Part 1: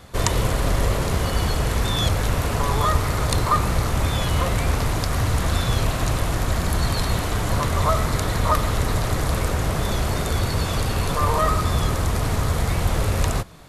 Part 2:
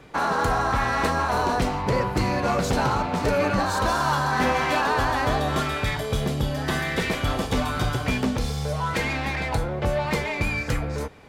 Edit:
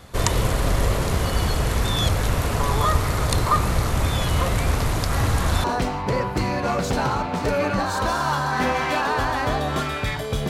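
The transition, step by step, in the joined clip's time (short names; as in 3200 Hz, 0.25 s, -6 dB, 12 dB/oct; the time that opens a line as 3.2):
part 1
5.09 add part 2 from 0.89 s 0.55 s -9 dB
5.64 switch to part 2 from 1.44 s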